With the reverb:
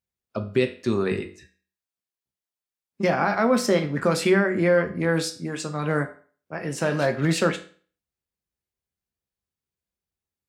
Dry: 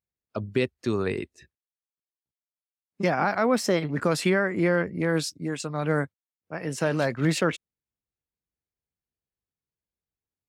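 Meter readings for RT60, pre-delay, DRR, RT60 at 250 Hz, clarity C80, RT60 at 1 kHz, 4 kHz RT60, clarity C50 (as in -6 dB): 0.45 s, 5 ms, 5.5 dB, 0.45 s, 17.5 dB, 0.45 s, 0.40 s, 13.0 dB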